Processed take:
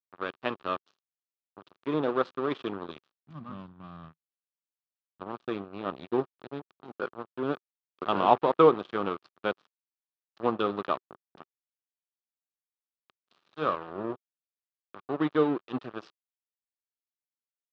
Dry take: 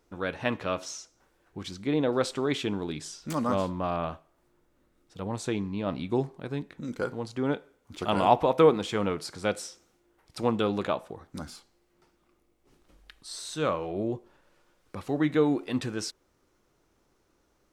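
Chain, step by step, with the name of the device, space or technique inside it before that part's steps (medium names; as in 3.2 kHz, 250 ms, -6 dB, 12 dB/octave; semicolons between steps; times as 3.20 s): blown loudspeaker (crossover distortion -32.5 dBFS; cabinet simulation 150–3700 Hz, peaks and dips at 380 Hz +4 dB, 1.2 kHz +8 dB, 2.1 kHz -7 dB); 3.12–5.21 s: FFT filter 160 Hz 0 dB, 430 Hz -22 dB, 1.9 kHz -15 dB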